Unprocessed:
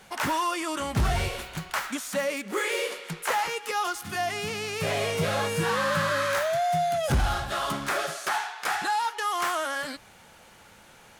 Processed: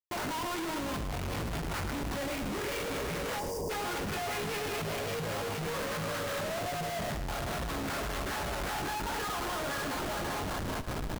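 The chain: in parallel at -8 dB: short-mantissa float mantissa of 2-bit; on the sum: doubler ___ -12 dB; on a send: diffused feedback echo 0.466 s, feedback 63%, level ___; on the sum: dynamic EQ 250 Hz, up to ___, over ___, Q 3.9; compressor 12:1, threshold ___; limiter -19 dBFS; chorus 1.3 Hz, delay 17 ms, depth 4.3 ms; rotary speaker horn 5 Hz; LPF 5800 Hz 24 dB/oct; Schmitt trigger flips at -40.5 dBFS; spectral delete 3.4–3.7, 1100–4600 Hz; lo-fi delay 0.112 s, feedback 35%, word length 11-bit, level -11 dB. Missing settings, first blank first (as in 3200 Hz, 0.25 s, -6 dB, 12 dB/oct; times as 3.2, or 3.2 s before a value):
45 ms, -8.5 dB, +5 dB, -48 dBFS, -24 dBFS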